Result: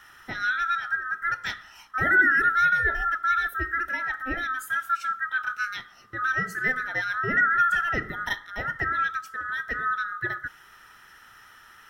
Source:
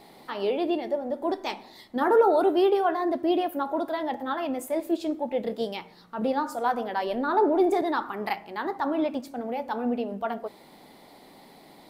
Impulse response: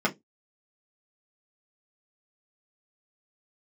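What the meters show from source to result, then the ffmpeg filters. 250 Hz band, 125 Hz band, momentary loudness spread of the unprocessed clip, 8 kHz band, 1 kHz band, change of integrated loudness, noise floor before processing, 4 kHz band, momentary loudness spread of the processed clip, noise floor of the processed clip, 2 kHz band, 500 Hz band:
-13.0 dB, n/a, 11 LU, +2.5 dB, +1.0 dB, +2.0 dB, -52 dBFS, 0.0 dB, 12 LU, -52 dBFS, +16.5 dB, -16.5 dB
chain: -af "afftfilt=real='real(if(lt(b,960),b+48*(1-2*mod(floor(b/48),2)),b),0)':imag='imag(if(lt(b,960),b+48*(1-2*mod(floor(b/48),2)),b),0)':win_size=2048:overlap=0.75"

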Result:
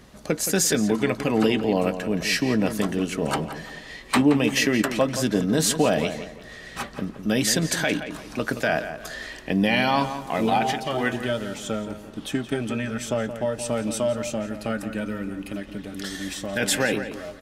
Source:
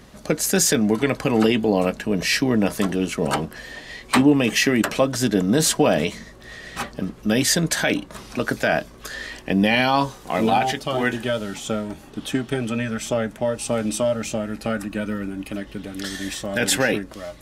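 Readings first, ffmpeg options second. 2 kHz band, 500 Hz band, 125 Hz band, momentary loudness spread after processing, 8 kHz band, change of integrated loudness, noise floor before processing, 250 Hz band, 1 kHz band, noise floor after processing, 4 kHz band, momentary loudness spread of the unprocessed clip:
-2.5 dB, -2.5 dB, -2.5 dB, 13 LU, -3.0 dB, -2.5 dB, -44 dBFS, -2.5 dB, -2.5 dB, -42 dBFS, -3.0 dB, 14 LU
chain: -filter_complex "[0:a]asplit=2[a][b];[b]adelay=172,lowpass=f=3.4k:p=1,volume=-10dB,asplit=2[c][d];[d]adelay=172,lowpass=f=3.4k:p=1,volume=0.35,asplit=2[e][f];[f]adelay=172,lowpass=f=3.4k:p=1,volume=0.35,asplit=2[g][h];[h]adelay=172,lowpass=f=3.4k:p=1,volume=0.35[i];[a][c][e][g][i]amix=inputs=5:normalize=0,volume=-3dB"

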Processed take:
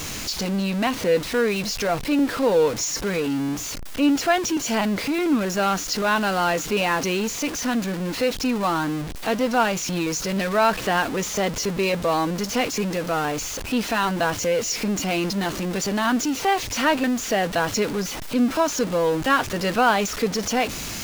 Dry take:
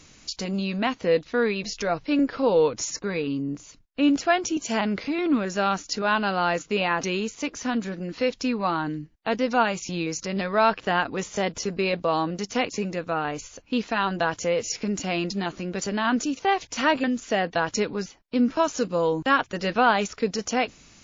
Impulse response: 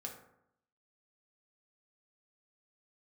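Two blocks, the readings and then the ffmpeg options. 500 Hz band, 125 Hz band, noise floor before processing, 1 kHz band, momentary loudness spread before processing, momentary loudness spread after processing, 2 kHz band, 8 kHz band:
+2.0 dB, +4.0 dB, -56 dBFS, +2.0 dB, 8 LU, 5 LU, +2.5 dB, n/a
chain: -af "aeval=exprs='val(0)+0.5*0.0501*sgn(val(0))':c=same"

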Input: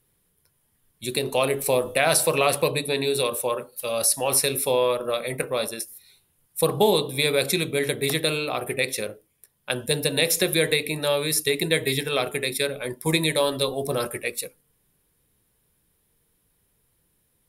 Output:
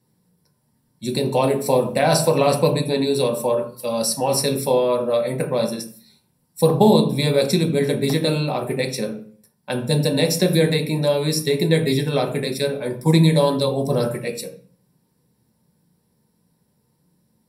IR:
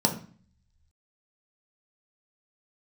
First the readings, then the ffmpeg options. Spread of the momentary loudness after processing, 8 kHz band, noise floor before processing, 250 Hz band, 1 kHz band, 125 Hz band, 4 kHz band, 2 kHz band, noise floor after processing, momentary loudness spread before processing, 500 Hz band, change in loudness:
10 LU, -3.0 dB, -69 dBFS, +9.5 dB, +4.0 dB, +11.0 dB, -0.5 dB, -3.5 dB, -67 dBFS, 9 LU, +4.5 dB, +3.5 dB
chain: -filter_complex "[1:a]atrim=start_sample=2205,afade=t=out:st=0.44:d=0.01,atrim=end_sample=19845[a];[0:a][a]afir=irnorm=-1:irlink=0,volume=-10dB"

